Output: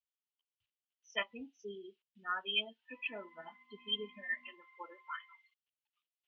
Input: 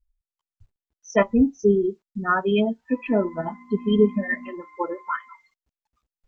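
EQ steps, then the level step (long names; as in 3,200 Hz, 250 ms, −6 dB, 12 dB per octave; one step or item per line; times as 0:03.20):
resonant band-pass 3,000 Hz, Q 5.5
high-frequency loss of the air 100 metres
+5.5 dB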